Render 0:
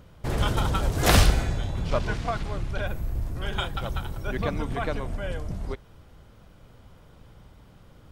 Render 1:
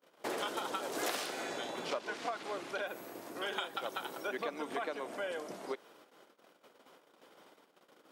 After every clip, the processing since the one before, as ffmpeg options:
ffmpeg -i in.wav -af "agate=range=-30dB:threshold=-49dB:ratio=16:detection=peak,highpass=frequency=310:width=0.5412,highpass=frequency=310:width=1.3066,acompressor=threshold=-35dB:ratio=8,volume=1dB" out.wav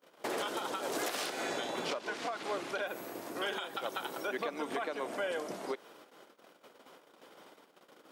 ffmpeg -i in.wav -af "alimiter=level_in=5dB:limit=-24dB:level=0:latency=1:release=146,volume=-5dB,volume=4dB" out.wav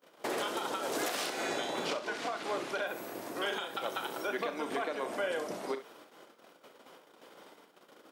ffmpeg -i in.wav -af "aecho=1:1:37|67:0.266|0.237,volume=1dB" out.wav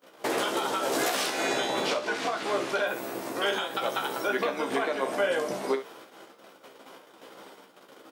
ffmpeg -i in.wav -filter_complex "[0:a]asplit=2[link_01][link_02];[link_02]adelay=15,volume=-5dB[link_03];[link_01][link_03]amix=inputs=2:normalize=0,volume=5.5dB" out.wav

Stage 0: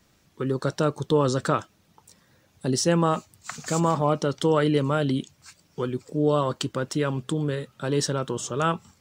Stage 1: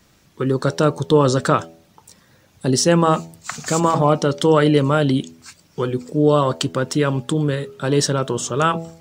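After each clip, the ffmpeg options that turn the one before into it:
ffmpeg -i in.wav -af "bandreject=frequency=82.33:width_type=h:width=4,bandreject=frequency=164.66:width_type=h:width=4,bandreject=frequency=246.99:width_type=h:width=4,bandreject=frequency=329.32:width_type=h:width=4,bandreject=frequency=411.65:width_type=h:width=4,bandreject=frequency=493.98:width_type=h:width=4,bandreject=frequency=576.31:width_type=h:width=4,bandreject=frequency=658.64:width_type=h:width=4,bandreject=frequency=740.97:width_type=h:width=4,bandreject=frequency=823.3:width_type=h:width=4,bandreject=frequency=905.63:width_type=h:width=4,volume=7dB" out.wav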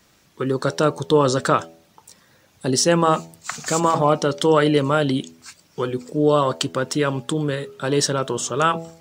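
ffmpeg -i in.wav -af "lowshelf=frequency=240:gain=-7" out.wav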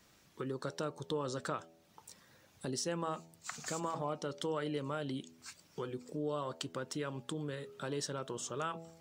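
ffmpeg -i in.wav -af "acompressor=threshold=-36dB:ratio=2,volume=-8dB" out.wav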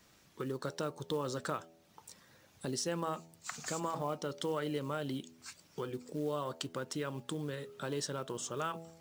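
ffmpeg -i in.wav -af "acrusher=bits=6:mode=log:mix=0:aa=0.000001,volume=1dB" out.wav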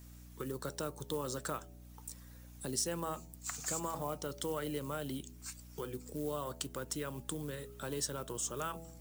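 ffmpeg -i in.wav -filter_complex "[0:a]acrossover=split=230|1700|6000[link_01][link_02][link_03][link_04];[link_04]crystalizer=i=2.5:c=0[link_05];[link_01][link_02][link_03][link_05]amix=inputs=4:normalize=0,aeval=exprs='val(0)+0.00316*(sin(2*PI*60*n/s)+sin(2*PI*2*60*n/s)/2+sin(2*PI*3*60*n/s)/3+sin(2*PI*4*60*n/s)/4+sin(2*PI*5*60*n/s)/5)':channel_layout=same,volume=-2.5dB" out.wav

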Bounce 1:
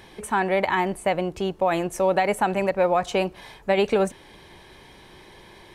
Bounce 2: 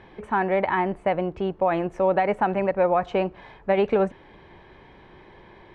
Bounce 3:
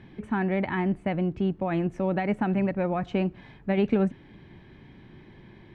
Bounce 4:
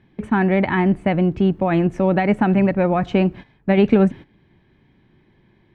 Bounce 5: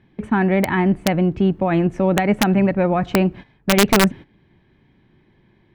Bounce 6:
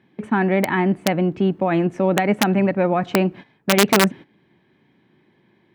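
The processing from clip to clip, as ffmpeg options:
ffmpeg -i in.wav -af "lowpass=2000" out.wav
ffmpeg -i in.wav -af "equalizer=frequency=125:width_type=o:width=1:gain=8,equalizer=frequency=250:width_type=o:width=1:gain=8,equalizer=frequency=500:width_type=o:width=1:gain=-7,equalizer=frequency=1000:width_type=o:width=1:gain=-7,volume=-2.5dB" out.wav
ffmpeg -i in.wav -af "agate=range=-16dB:threshold=-41dB:ratio=16:detection=peak,volume=9dB" out.wav
ffmpeg -i in.wav -af "aeval=exprs='(mod(2*val(0)+1,2)-1)/2':channel_layout=same" out.wav
ffmpeg -i in.wav -af "highpass=180" out.wav

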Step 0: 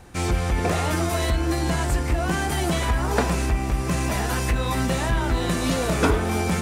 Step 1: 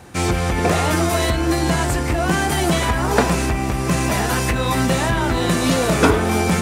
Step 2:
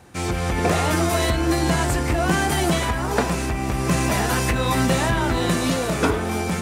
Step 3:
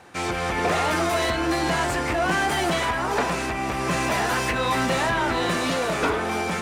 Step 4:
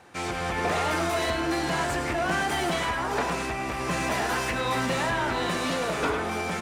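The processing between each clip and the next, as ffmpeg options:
ffmpeg -i in.wav -af "highpass=83,volume=6dB" out.wav
ffmpeg -i in.wav -af "dynaudnorm=framelen=110:gausssize=7:maxgain=11.5dB,volume=-6.5dB" out.wav
ffmpeg -i in.wav -filter_complex "[0:a]asplit=2[link_01][link_02];[link_02]highpass=frequency=720:poles=1,volume=17dB,asoftclip=type=tanh:threshold=-7dB[link_03];[link_01][link_03]amix=inputs=2:normalize=0,lowpass=frequency=2900:poles=1,volume=-6dB,volume=-6dB" out.wav
ffmpeg -i in.wav -af "aecho=1:1:104:0.335,volume=-4dB" out.wav

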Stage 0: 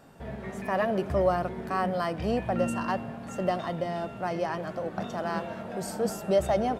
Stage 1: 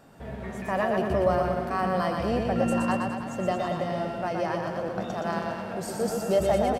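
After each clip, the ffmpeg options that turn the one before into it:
ffmpeg -i in.wav -af "aecho=1:1:120|228|325.2|412.7|491.4:0.631|0.398|0.251|0.158|0.1" out.wav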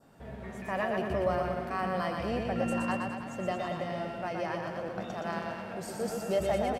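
ffmpeg -i in.wav -af "adynamicequalizer=threshold=0.00562:dfrequency=2300:dqfactor=1.4:tfrequency=2300:tqfactor=1.4:attack=5:release=100:ratio=0.375:range=2.5:mode=boostabove:tftype=bell,volume=-6dB" out.wav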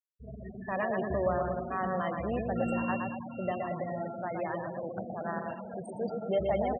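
ffmpeg -i in.wav -af "afftfilt=real='re*gte(hypot(re,im),0.0251)':imag='im*gte(hypot(re,im),0.0251)':win_size=1024:overlap=0.75" out.wav

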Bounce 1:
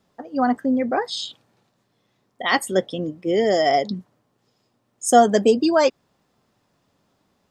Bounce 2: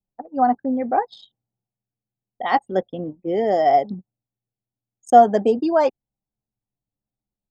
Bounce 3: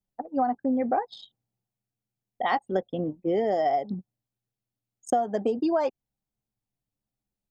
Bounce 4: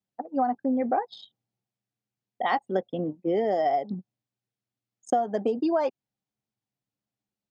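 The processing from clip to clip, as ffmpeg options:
ffmpeg -i in.wav -af "lowpass=frequency=1500:poles=1,anlmdn=3.98,equalizer=frequency=790:width_type=o:width=0.45:gain=10.5,volume=-2.5dB" out.wav
ffmpeg -i in.wav -af "acompressor=threshold=-21dB:ratio=16" out.wav
ffmpeg -i in.wav -af "highpass=120,lowpass=6400" out.wav

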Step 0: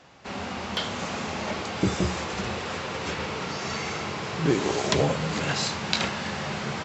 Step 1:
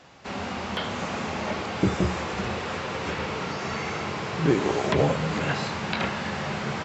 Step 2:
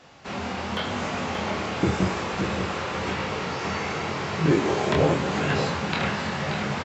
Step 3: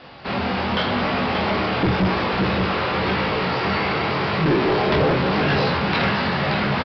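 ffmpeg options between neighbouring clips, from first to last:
ffmpeg -i in.wav -filter_complex "[0:a]acrossover=split=2900[link_01][link_02];[link_02]acompressor=threshold=-43dB:ratio=4:attack=1:release=60[link_03];[link_01][link_03]amix=inputs=2:normalize=0,volume=1.5dB" out.wav
ffmpeg -i in.wav -af "flanger=delay=19.5:depth=6.5:speed=0.91,aecho=1:1:580:0.422,volume=4dB" out.wav
ffmpeg -i in.wav -filter_complex "[0:a]asplit=2[link_01][link_02];[link_02]adelay=16,volume=-11dB[link_03];[link_01][link_03]amix=inputs=2:normalize=0,aresample=11025,asoftclip=type=tanh:threshold=-23dB,aresample=44100,volume=8.5dB" out.wav

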